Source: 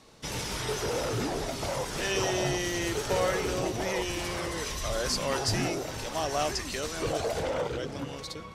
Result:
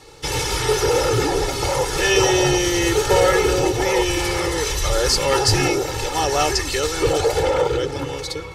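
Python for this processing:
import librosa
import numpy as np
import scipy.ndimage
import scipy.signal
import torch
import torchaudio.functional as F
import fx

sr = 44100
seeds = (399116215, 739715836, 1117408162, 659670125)

y = x + 0.95 * np.pad(x, (int(2.3 * sr / 1000.0), 0))[:len(x)]
y = y * 10.0 ** (8.5 / 20.0)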